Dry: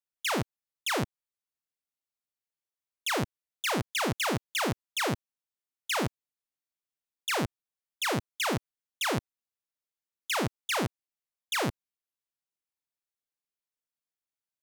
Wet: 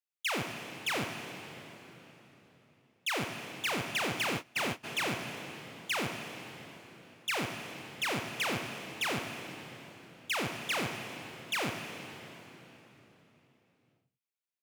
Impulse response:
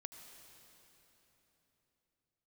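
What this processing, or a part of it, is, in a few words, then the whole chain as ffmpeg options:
PA in a hall: -filter_complex "[0:a]highpass=110,equalizer=frequency=2500:width_type=o:width=0.65:gain=7,aecho=1:1:88:0.282[link_01];[1:a]atrim=start_sample=2205[link_02];[link_01][link_02]afir=irnorm=-1:irlink=0,asplit=3[link_03][link_04][link_05];[link_03]afade=type=out:start_time=4.25:duration=0.02[link_06];[link_04]agate=range=-23dB:threshold=-33dB:ratio=16:detection=peak,afade=type=in:start_time=4.25:duration=0.02,afade=type=out:start_time=4.83:duration=0.02[link_07];[link_05]afade=type=in:start_time=4.83:duration=0.02[link_08];[link_06][link_07][link_08]amix=inputs=3:normalize=0"

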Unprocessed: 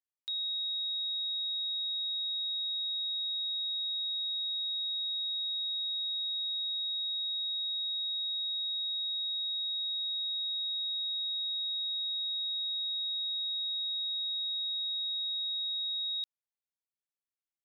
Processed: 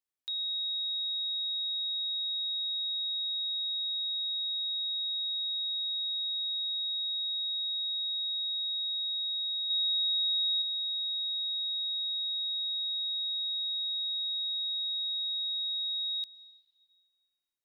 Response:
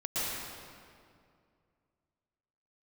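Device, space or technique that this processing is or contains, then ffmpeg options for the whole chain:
compressed reverb return: -filter_complex "[0:a]asplit=2[link_01][link_02];[1:a]atrim=start_sample=2205[link_03];[link_02][link_03]afir=irnorm=-1:irlink=0,acompressor=threshold=-30dB:ratio=6,volume=-21dB[link_04];[link_01][link_04]amix=inputs=2:normalize=0,asettb=1/sr,asplit=3[link_05][link_06][link_07];[link_05]atrim=end=9.704[link_08];[link_06]atrim=start=9.7:end=10.62,asetpts=PTS-STARTPTS,afade=type=in:duration=0.004:curve=qsin,afade=type=out:start_time=0.916:duration=0.004:curve=qsin,equalizer=frequency=3600:width=1.5:gain=4.5[link_09];[link_07]atrim=start=10.616[link_10];[link_08][link_09]acrossfade=duration=0.004:curve1=hsin:curve2=qsin[link_11];[link_11][link_10]acrossfade=duration=0.004:curve1=qsin:curve2=hsin"

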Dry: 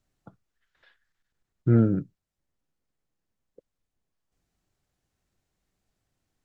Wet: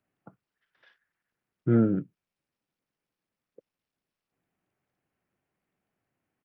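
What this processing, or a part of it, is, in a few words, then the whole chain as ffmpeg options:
Bluetooth headset: -af "highpass=150,aresample=8000,aresample=44100" -ar 44100 -c:a sbc -b:a 64k

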